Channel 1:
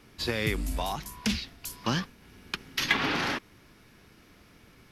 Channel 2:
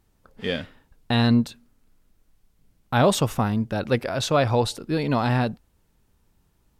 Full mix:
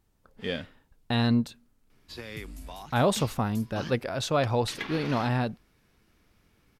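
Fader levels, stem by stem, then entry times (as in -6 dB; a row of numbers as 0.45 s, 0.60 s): -11.0 dB, -5.0 dB; 1.90 s, 0.00 s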